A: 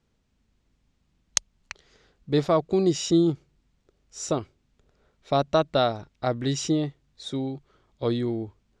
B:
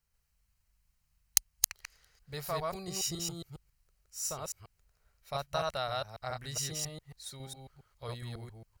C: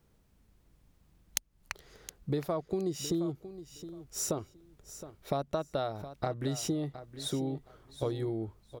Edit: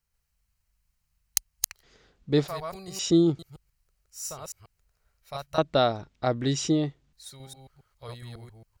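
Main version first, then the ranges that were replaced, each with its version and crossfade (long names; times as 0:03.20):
B
0:01.83–0:02.48: punch in from A
0:02.99–0:03.39: punch in from A
0:05.58–0:07.13: punch in from A
not used: C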